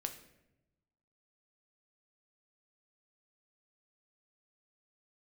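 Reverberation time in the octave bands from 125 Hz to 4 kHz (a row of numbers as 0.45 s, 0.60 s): 1.5 s, 1.3 s, 1.0 s, 0.75 s, 0.80 s, 0.60 s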